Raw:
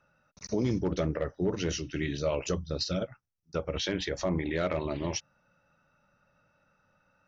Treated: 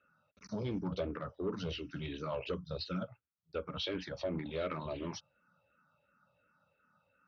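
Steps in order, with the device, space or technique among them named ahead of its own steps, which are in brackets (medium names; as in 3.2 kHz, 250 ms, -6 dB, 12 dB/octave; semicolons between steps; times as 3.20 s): barber-pole phaser into a guitar amplifier (barber-pole phaser -2.8 Hz; saturation -25 dBFS, distortion -18 dB; cabinet simulation 92–4300 Hz, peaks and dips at 140 Hz -3 dB, 340 Hz -5 dB, 770 Hz -4 dB, 1.3 kHz +4 dB, 1.9 kHz -7 dB); trim -1 dB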